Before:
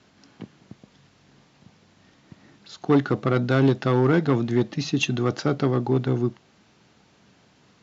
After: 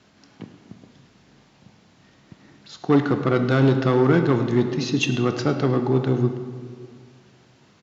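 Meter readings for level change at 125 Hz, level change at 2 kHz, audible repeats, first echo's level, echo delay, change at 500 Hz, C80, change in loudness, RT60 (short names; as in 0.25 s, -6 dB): +2.0 dB, +2.0 dB, 1, -17.5 dB, 0.106 s, +2.5 dB, 9.0 dB, +2.0 dB, 2.0 s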